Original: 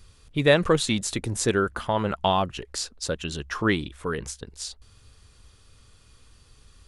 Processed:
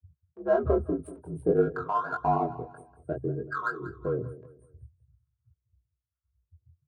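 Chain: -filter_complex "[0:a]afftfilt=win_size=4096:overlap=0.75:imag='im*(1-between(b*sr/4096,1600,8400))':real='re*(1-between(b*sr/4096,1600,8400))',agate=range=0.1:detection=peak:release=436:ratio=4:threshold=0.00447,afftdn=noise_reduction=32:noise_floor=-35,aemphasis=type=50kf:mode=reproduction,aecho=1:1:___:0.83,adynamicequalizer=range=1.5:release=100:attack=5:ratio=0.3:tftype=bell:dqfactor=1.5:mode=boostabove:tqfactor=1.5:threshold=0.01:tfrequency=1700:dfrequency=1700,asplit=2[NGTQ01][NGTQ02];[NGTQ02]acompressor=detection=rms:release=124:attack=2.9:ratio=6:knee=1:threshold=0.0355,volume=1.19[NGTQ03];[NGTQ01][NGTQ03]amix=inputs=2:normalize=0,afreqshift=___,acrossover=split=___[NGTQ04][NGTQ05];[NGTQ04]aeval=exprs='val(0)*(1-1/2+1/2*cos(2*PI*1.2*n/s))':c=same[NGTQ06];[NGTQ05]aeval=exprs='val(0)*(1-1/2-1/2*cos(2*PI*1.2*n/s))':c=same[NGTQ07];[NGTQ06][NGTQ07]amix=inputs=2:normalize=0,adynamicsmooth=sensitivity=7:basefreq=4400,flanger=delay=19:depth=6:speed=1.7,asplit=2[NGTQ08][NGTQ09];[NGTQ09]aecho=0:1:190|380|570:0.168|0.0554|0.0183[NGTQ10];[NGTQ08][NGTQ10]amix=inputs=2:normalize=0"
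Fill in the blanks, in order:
3.1, 60, 850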